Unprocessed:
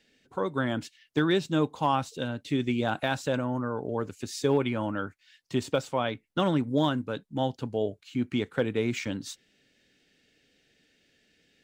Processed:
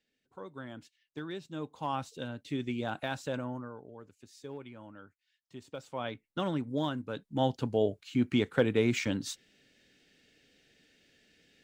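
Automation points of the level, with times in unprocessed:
0:01.47 −15.5 dB
0:02.00 −7 dB
0:03.48 −7 dB
0:03.95 −19 dB
0:05.63 −19 dB
0:06.06 −7 dB
0:06.98 −7 dB
0:07.51 +1 dB

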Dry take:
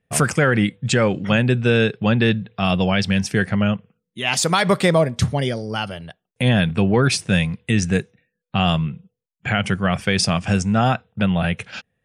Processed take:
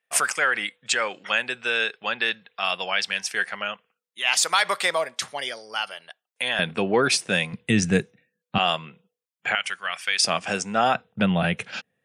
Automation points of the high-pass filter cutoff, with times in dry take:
960 Hz
from 0:06.59 350 Hz
from 0:07.53 150 Hz
from 0:08.58 520 Hz
from 0:09.55 1,500 Hz
from 0:10.25 420 Hz
from 0:10.95 180 Hz

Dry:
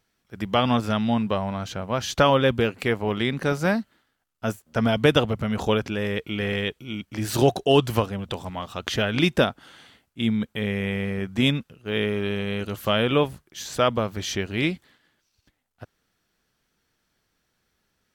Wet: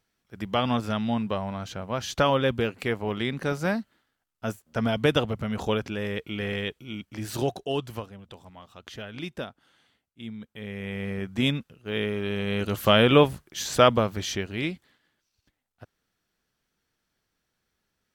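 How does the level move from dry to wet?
0:06.98 −4 dB
0:08.22 −15 dB
0:10.41 −15 dB
0:11.11 −3.5 dB
0:12.23 −3.5 dB
0:12.77 +3.5 dB
0:13.83 +3.5 dB
0:14.63 −5.5 dB

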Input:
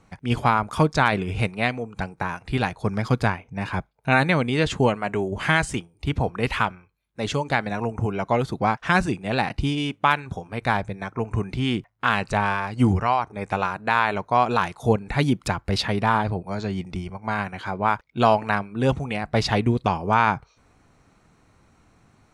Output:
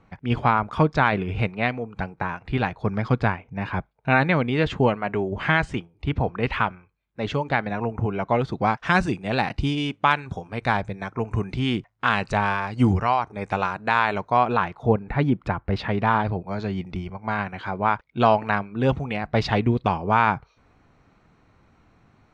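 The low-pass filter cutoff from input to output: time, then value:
0:08.28 3,100 Hz
0:08.77 6,600 Hz
0:14.24 6,600 Hz
0:14.44 3,100 Hz
0:14.90 1,900 Hz
0:15.70 1,900 Hz
0:16.18 3,900 Hz

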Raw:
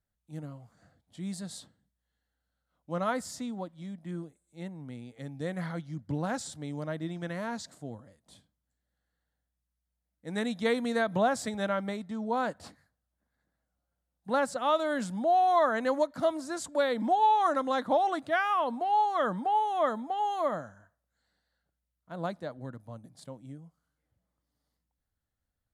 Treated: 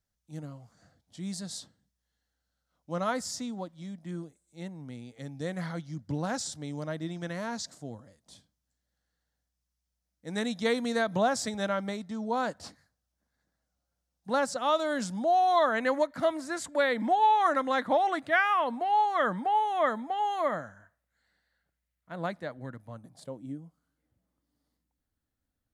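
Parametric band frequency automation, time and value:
parametric band +8.5 dB 0.8 octaves
0:15.41 5,600 Hz
0:15.86 2,000 Hz
0:22.90 2,000 Hz
0:23.42 280 Hz

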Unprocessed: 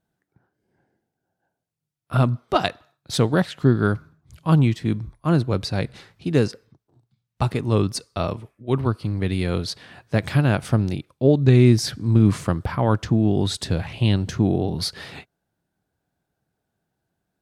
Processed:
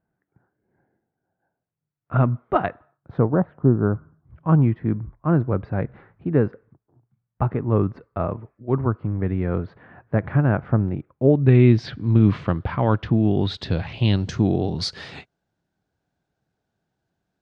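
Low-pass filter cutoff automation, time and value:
low-pass filter 24 dB per octave
0:02.56 2,000 Hz
0:03.68 1,000 Hz
0:04.48 1,700 Hz
0:11.11 1,700 Hz
0:11.78 3,500 Hz
0:13.35 3,500 Hz
0:14.41 7,000 Hz

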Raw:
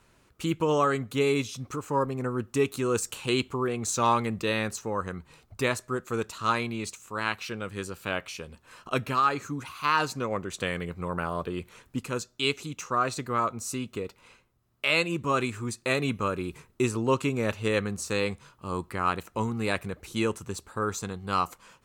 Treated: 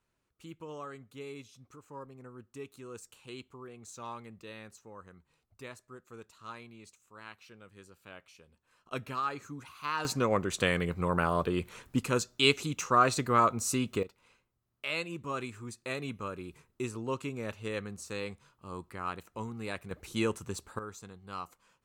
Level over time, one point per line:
−19 dB
from 0:08.91 −9.5 dB
from 0:10.05 +2.5 dB
from 0:14.03 −10 dB
from 0:19.91 −3 dB
from 0:20.79 −14 dB

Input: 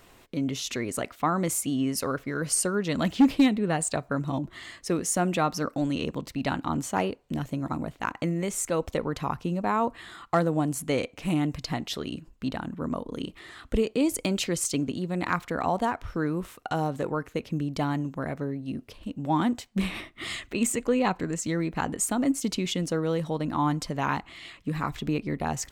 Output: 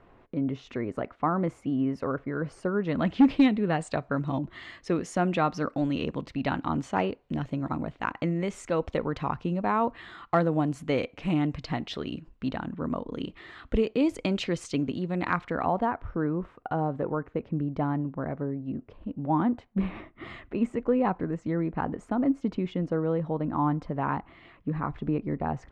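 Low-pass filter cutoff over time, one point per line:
0:02.70 1,400 Hz
0:03.34 3,300 Hz
0:15.33 3,300 Hz
0:16.10 1,300 Hz

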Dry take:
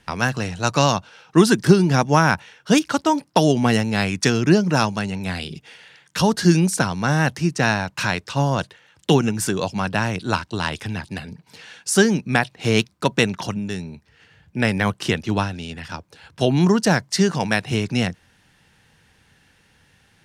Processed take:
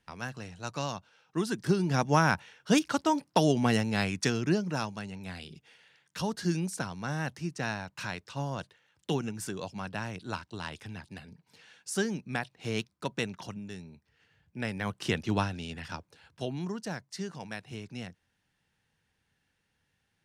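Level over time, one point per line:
0:01.45 −17 dB
0:02.09 −8 dB
0:04.01 −8 dB
0:04.85 −14.5 dB
0:14.78 −14.5 dB
0:15.18 −7 dB
0:15.92 −7 dB
0:16.64 −19.5 dB

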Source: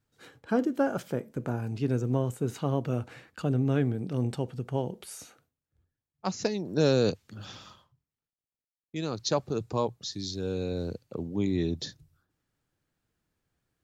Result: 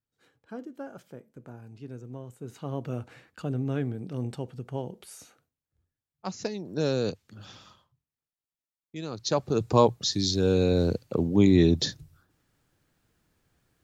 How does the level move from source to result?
0:02.26 −13.5 dB
0:02.83 −3.5 dB
0:09.09 −3.5 dB
0:09.77 +9 dB

